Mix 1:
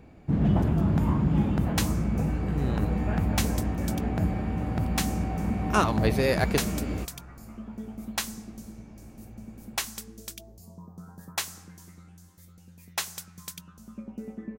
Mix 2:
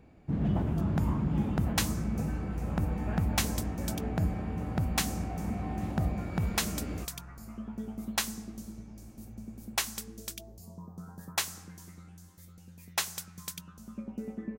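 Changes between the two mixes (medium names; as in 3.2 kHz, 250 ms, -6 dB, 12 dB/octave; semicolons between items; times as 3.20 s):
speech: muted; first sound -6.0 dB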